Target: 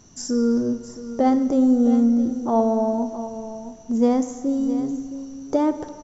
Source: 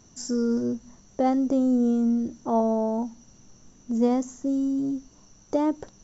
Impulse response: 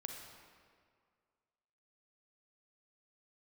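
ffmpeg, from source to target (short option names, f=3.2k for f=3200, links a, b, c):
-filter_complex "[0:a]aecho=1:1:666:0.224,asplit=2[a][b];[1:a]atrim=start_sample=2205[c];[b][c]afir=irnorm=-1:irlink=0,volume=-1.5dB[d];[a][d]amix=inputs=2:normalize=0"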